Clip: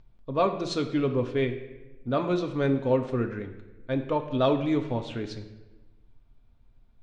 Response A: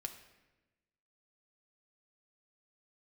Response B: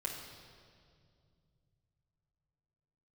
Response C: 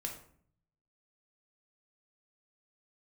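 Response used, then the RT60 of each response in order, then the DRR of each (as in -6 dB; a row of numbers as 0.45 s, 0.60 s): A; 1.1 s, 2.3 s, 0.55 s; 4.5 dB, -2.5 dB, 1.0 dB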